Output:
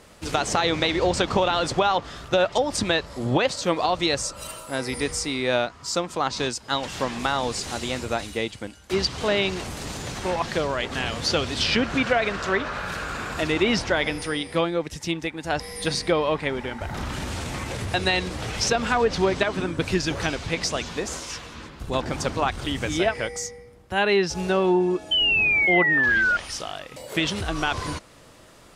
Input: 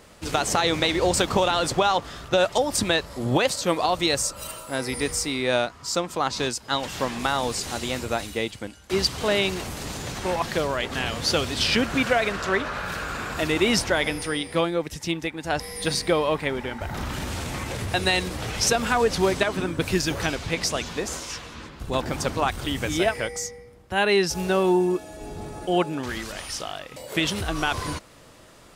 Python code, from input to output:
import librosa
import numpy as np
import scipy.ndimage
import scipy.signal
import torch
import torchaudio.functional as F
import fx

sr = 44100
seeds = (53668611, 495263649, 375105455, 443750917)

y = fx.spec_paint(x, sr, seeds[0], shape='fall', start_s=25.11, length_s=1.26, low_hz=1400.0, high_hz=3100.0, level_db=-20.0)
y = fx.env_lowpass_down(y, sr, base_hz=1800.0, full_db=-12.0)